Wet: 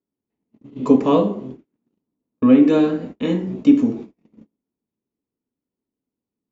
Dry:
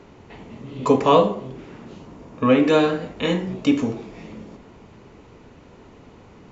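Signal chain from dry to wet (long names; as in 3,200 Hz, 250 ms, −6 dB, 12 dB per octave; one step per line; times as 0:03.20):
noise gate −34 dBFS, range −41 dB
parametric band 260 Hz +14.5 dB 1.4 octaves
level −7.5 dB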